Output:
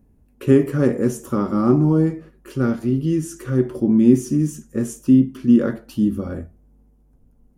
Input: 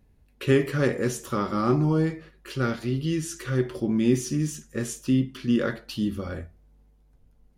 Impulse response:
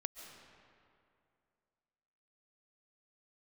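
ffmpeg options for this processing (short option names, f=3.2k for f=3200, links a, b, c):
-af "equalizer=f=250:t=o:w=1:g=7,equalizer=f=2k:t=o:w=1:g=-6,equalizer=f=4k:t=o:w=1:g=-12,volume=3dB"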